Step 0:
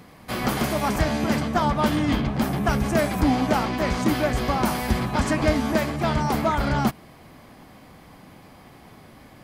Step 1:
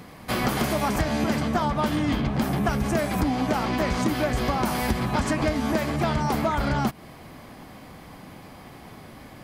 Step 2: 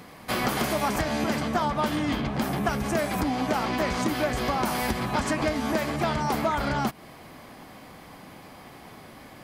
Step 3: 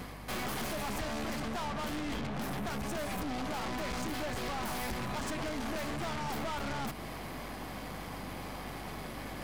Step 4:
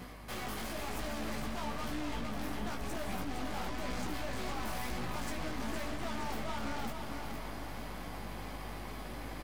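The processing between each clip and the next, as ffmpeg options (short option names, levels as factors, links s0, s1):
-af "acompressor=threshold=0.0631:ratio=6,volume=1.5"
-af "lowshelf=f=210:g=-7"
-af "areverse,acompressor=mode=upward:threshold=0.0282:ratio=2.5,areverse,aeval=exprs='(tanh(56.2*val(0)+0.5)-tanh(0.5))/56.2':c=same,aeval=exprs='val(0)+0.00398*(sin(2*PI*50*n/s)+sin(2*PI*2*50*n/s)/2+sin(2*PI*3*50*n/s)/3+sin(2*PI*4*50*n/s)/4+sin(2*PI*5*50*n/s)/5)':c=same"
-filter_complex "[0:a]asplit=2[s0][s1];[s1]acrusher=bits=4:mode=log:mix=0:aa=0.000001,volume=0.316[s2];[s0][s2]amix=inputs=2:normalize=0,flanger=delay=16.5:depth=2.4:speed=1,aecho=1:1:461|922|1383|1844|2305|2766|3227:0.473|0.26|0.143|0.0787|0.0433|0.0238|0.0131,volume=0.668"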